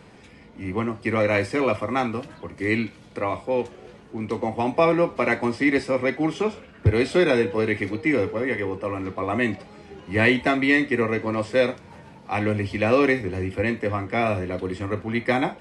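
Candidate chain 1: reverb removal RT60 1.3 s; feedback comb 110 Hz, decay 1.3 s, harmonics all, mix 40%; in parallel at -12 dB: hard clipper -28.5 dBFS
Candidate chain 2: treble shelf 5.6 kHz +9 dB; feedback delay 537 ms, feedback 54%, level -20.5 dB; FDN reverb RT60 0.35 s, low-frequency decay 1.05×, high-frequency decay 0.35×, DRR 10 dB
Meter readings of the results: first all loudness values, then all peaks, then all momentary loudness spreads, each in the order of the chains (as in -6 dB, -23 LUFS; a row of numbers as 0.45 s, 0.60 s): -28.0 LUFS, -22.5 LUFS; -10.5 dBFS, -5.0 dBFS; 10 LU, 11 LU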